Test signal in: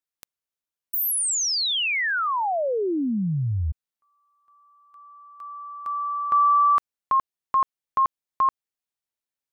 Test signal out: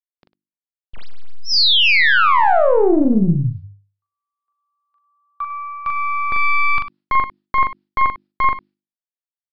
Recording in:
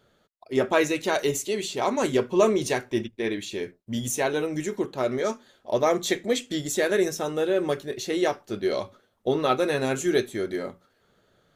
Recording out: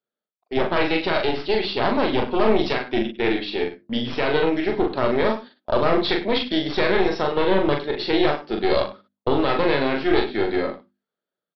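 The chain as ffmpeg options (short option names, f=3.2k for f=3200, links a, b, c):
-filter_complex "[0:a]highpass=f=170:w=0.5412,highpass=f=170:w=1.3066,agate=range=-30dB:threshold=-43dB:ratio=16:release=147:detection=rms,bandreject=f=50:t=h:w=6,bandreject=f=100:t=h:w=6,bandreject=f=150:t=h:w=6,bandreject=f=200:t=h:w=6,bandreject=f=250:t=h:w=6,bandreject=f=300:t=h:w=6,bandreject=f=350:t=h:w=6,aeval=exprs='0.473*(cos(1*acos(clip(val(0)/0.473,-1,1)))-cos(1*PI/2))+0.168*(cos(4*acos(clip(val(0)/0.473,-1,1)))-cos(4*PI/2))':c=same,dynaudnorm=f=530:g=3:m=15dB,asplit=2[a][b];[b]asoftclip=type=tanh:threshold=-12dB,volume=-9dB[c];[a][c]amix=inputs=2:normalize=0,alimiter=limit=-9dB:level=0:latency=1:release=26,asplit=2[d][e];[e]aecho=0:1:41|100:0.631|0.188[f];[d][f]amix=inputs=2:normalize=0,aresample=11025,aresample=44100"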